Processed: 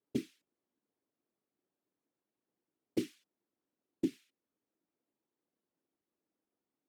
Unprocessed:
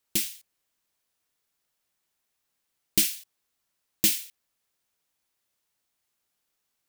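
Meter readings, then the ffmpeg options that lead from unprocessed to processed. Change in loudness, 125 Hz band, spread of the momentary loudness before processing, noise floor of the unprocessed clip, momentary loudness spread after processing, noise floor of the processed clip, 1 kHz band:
-14.5 dB, -5.0 dB, 10 LU, -80 dBFS, 7 LU, under -85 dBFS, n/a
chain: -af "afftfilt=real='hypot(re,im)*cos(2*PI*random(0))':imag='hypot(re,im)*sin(2*PI*random(1))':win_size=512:overlap=0.75,bandpass=f=300:t=q:w=2.2:csg=0,alimiter=level_in=11.5dB:limit=-24dB:level=0:latency=1:release=418,volume=-11.5dB,volume=14.5dB"

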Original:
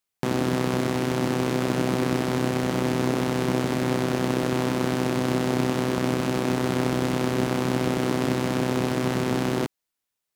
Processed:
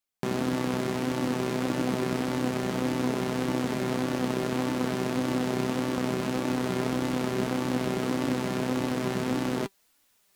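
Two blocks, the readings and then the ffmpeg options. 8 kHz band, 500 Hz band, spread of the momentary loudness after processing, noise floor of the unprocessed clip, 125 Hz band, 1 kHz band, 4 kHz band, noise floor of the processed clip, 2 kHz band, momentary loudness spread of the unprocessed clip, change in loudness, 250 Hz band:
-4.0 dB, -4.5 dB, 1 LU, -84 dBFS, -6.5 dB, -4.0 dB, -4.0 dB, -67 dBFS, -4.0 dB, 1 LU, -4.0 dB, -3.0 dB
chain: -af "areverse,acompressor=mode=upward:threshold=-45dB:ratio=2.5,areverse,flanger=delay=3.4:depth=1.7:regen=52:speed=1.7:shape=sinusoidal"

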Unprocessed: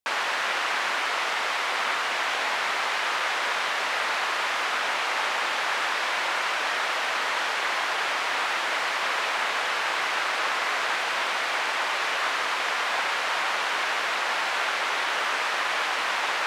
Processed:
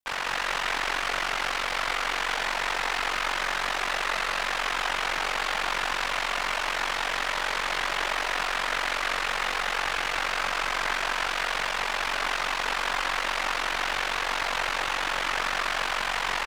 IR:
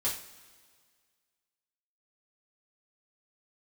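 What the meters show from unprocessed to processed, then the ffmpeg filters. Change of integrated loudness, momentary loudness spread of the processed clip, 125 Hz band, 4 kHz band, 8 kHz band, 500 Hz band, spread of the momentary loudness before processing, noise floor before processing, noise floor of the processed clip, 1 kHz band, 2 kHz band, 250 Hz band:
-1.5 dB, 1 LU, n/a, -1.5 dB, -0.5 dB, -1.5 dB, 0 LU, -28 dBFS, -30 dBFS, -2.0 dB, -2.0 dB, +1.0 dB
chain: -af "aeval=exprs='clip(val(0),-1,0.0501)':c=same,aecho=1:1:191|382|573|764|955|1146|1337|1528:0.708|0.396|0.222|0.124|0.0696|0.039|0.0218|0.0122,aeval=exprs='val(0)*sin(2*PI*23*n/s)':c=same"

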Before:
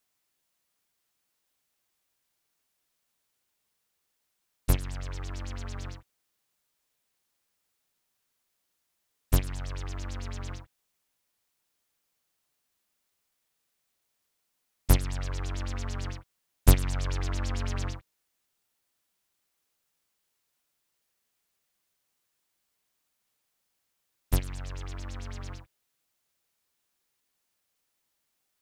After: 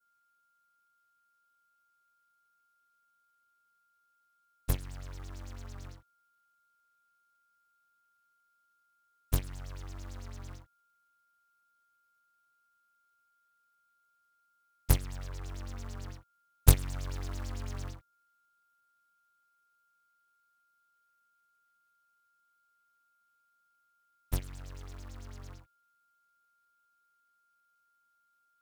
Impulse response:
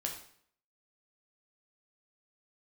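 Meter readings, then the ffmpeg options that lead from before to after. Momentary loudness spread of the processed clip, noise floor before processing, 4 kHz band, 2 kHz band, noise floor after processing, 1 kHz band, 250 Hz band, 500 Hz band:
18 LU, -79 dBFS, -5.0 dB, -6.5 dB, -74 dBFS, -6.0 dB, -6.5 dB, -5.5 dB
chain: -filter_complex "[0:a]aeval=exprs='val(0)+0.000708*sin(2*PI*1400*n/s)':c=same,adynamicequalizer=threshold=0.00141:dfrequency=2700:dqfactor=0.89:tfrequency=2700:tqfactor=0.89:attack=5:release=100:ratio=0.375:range=2.5:mode=cutabove:tftype=bell,aeval=exprs='0.596*(cos(1*acos(clip(val(0)/0.596,-1,1)))-cos(1*PI/2))+0.133*(cos(3*acos(clip(val(0)/0.596,-1,1)))-cos(3*PI/2))':c=same,asplit=2[a][b];[b]acrusher=bits=2:mode=log:mix=0:aa=0.000001,volume=-5dB[c];[a][c]amix=inputs=2:normalize=0,volume=-2dB"

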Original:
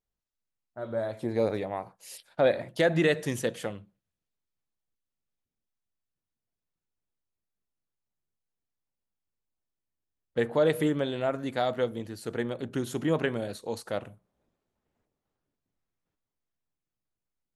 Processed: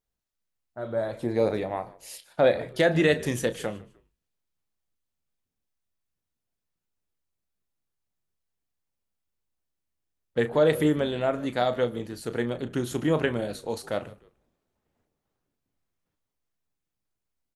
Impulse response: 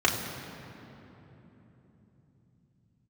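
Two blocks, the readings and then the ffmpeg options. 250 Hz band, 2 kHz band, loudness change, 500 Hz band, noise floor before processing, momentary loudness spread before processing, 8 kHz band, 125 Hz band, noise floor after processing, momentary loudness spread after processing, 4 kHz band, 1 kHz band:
+3.0 dB, +3.0 dB, +3.0 dB, +3.0 dB, under -85 dBFS, 13 LU, +3.0 dB, +3.0 dB, -85 dBFS, 13 LU, +3.0 dB, +3.0 dB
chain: -filter_complex "[0:a]asplit=2[a][b];[b]adelay=33,volume=-12dB[c];[a][c]amix=inputs=2:normalize=0,asplit=2[d][e];[e]asplit=2[f][g];[f]adelay=151,afreqshift=-73,volume=-21dB[h];[g]adelay=302,afreqshift=-146,volume=-30.9dB[i];[h][i]amix=inputs=2:normalize=0[j];[d][j]amix=inputs=2:normalize=0,volume=2.5dB"

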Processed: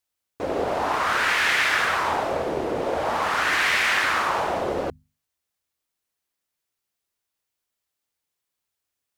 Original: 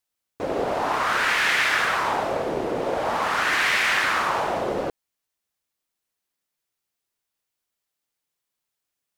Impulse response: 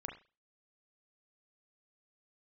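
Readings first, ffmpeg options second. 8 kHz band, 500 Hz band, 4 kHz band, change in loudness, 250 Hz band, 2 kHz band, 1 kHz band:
0.0 dB, 0.0 dB, 0.0 dB, 0.0 dB, -0.5 dB, 0.0 dB, 0.0 dB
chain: -af "equalizer=f=79:w=6.7:g=9.5,bandreject=f=50:t=h:w=6,bandreject=f=100:t=h:w=6,bandreject=f=150:t=h:w=6,bandreject=f=200:t=h:w=6,bandreject=f=250:t=h:w=6"

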